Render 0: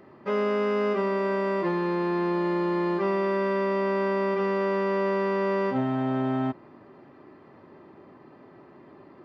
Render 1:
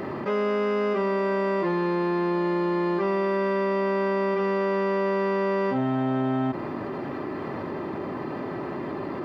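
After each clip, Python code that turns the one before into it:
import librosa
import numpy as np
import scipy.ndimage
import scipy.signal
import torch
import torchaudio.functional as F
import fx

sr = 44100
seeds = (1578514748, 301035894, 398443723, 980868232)

y = fx.env_flatten(x, sr, amount_pct=70)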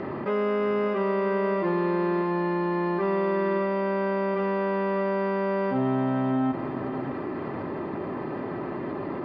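y = fx.air_absorb(x, sr, metres=200.0)
y = y + 10.0 ** (-11.0 / 20.0) * np.pad(y, (int(600 * sr / 1000.0), 0))[:len(y)]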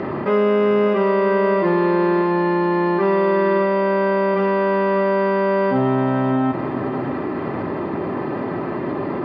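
y = scipy.signal.sosfilt(scipy.signal.butter(2, 51.0, 'highpass', fs=sr, output='sos'), x)
y = fx.doubler(y, sr, ms=48.0, db=-12)
y = y * 10.0 ** (7.5 / 20.0)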